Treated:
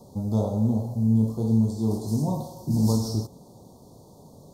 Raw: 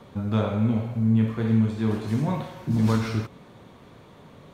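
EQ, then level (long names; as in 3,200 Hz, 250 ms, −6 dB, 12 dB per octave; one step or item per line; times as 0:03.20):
Chebyshev band-stop filter 870–4,800 Hz, order 3
high-shelf EQ 4,000 Hz +12 dB
0.0 dB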